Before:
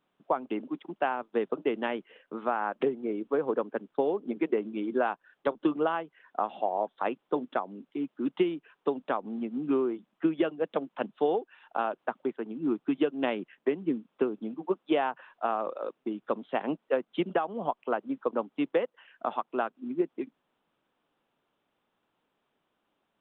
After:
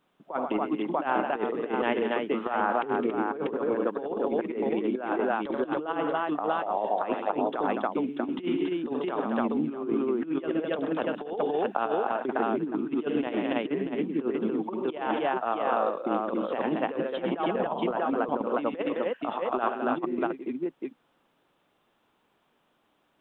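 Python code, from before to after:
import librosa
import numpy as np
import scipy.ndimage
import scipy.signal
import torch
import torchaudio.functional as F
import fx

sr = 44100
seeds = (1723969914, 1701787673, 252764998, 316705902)

y = fx.echo_multitap(x, sr, ms=(72, 102, 128, 211, 280, 640), db=(-14.0, -19.0, -13.5, -13.0, -5.0, -6.0))
y = fx.over_compress(y, sr, threshold_db=-30.0, ratio=-0.5)
y = y * librosa.db_to_amplitude(3.0)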